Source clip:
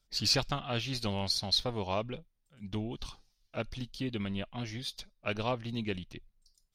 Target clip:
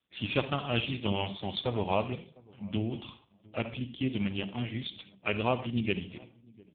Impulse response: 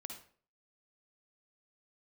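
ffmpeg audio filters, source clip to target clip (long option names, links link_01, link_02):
-filter_complex "[0:a]asettb=1/sr,asplit=3[link_01][link_02][link_03];[link_01]atrim=end=3.744[link_04];[link_02]atrim=start=3.74:end=4.42,asetpts=PTS-STARTPTS,afade=type=in:duration=0.004:curve=qsin,afade=type=out:start_time=0.676:duration=0.004:curve=qsin,acompressor=mode=upward:threshold=-45dB:ratio=2.5[link_05];[link_03]atrim=start=4.416[link_06];[link_04][link_05]acrossfade=duration=0.004:curve1=hsin:curve2=qsin[link_07];[link_07][link_06]acrossfade=duration=0.004:curve1=qsin:curve2=hsin,asplit=2[link_08][link_09];[link_09]adelay=703,lowpass=frequency=820:poles=1,volume=-23.5dB,asplit=2[link_10][link_11];[link_11]adelay=703,lowpass=frequency=820:poles=1,volume=0.2[link_12];[link_08][link_10][link_12]amix=inputs=3:normalize=0,asplit=2[link_13][link_14];[1:a]atrim=start_sample=2205,lowshelf=frequency=97:gain=4[link_15];[link_14][link_15]afir=irnorm=-1:irlink=0,volume=2.5dB[link_16];[link_13][link_16]amix=inputs=2:normalize=0,aexciter=amount=1.4:drive=5.3:freq=2400" -ar 8000 -c:a libopencore_amrnb -b:a 5150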